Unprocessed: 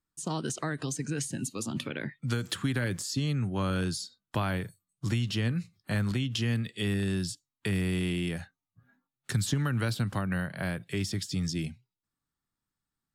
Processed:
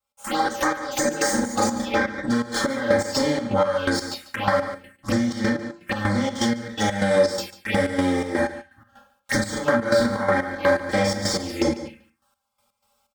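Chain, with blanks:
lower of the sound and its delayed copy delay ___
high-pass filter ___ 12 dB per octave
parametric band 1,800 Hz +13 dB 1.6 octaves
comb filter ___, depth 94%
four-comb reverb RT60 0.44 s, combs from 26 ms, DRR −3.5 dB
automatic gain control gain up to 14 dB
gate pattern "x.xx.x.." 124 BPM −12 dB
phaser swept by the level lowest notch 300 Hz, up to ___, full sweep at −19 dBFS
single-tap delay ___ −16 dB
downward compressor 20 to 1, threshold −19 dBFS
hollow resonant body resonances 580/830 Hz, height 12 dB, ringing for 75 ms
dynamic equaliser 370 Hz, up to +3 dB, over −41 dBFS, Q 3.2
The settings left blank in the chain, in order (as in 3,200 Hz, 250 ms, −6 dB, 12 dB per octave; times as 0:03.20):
8.8 ms, 54 Hz, 3.8 ms, 2,700 Hz, 145 ms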